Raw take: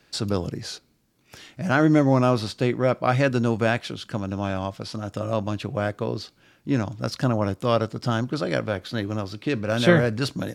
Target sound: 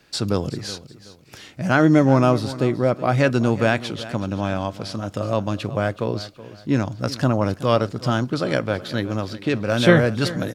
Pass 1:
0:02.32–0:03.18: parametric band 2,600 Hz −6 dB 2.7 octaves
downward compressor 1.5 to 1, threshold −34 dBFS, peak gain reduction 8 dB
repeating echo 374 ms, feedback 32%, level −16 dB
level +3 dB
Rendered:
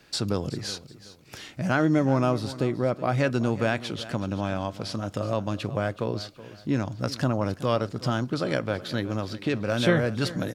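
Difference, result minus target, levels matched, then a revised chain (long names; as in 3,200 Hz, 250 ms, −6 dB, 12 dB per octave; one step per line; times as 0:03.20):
downward compressor: peak gain reduction +8 dB
0:02.32–0:03.18: parametric band 2,600 Hz −6 dB 2.7 octaves
repeating echo 374 ms, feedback 32%, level −16 dB
level +3 dB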